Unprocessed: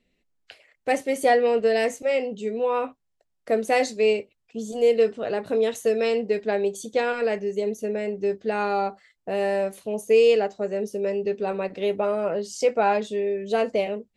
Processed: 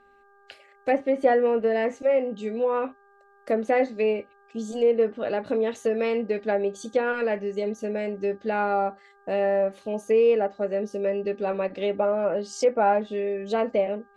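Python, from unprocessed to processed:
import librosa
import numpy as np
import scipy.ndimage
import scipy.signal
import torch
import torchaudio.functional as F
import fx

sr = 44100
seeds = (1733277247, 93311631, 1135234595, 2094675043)

y = x + 0.32 * np.pad(x, (int(3.5 * sr / 1000.0), 0))[:len(x)]
y = fx.dmg_buzz(y, sr, base_hz=400.0, harmonics=4, level_db=-58.0, tilt_db=-1, odd_only=False)
y = fx.env_lowpass_down(y, sr, base_hz=1600.0, full_db=-19.0)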